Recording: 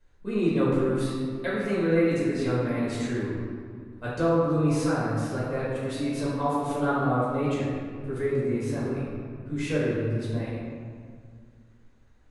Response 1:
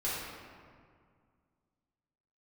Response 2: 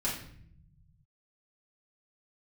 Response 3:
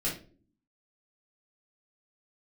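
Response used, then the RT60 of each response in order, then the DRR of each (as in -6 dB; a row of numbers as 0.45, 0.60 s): 1; 2.0 s, 0.60 s, not exponential; -9.0, -7.0, -7.0 dB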